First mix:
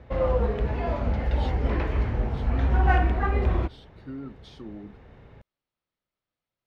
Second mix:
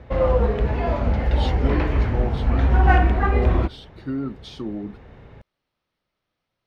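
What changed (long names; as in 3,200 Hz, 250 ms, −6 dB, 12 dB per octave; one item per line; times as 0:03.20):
speech +10.5 dB
background +5.0 dB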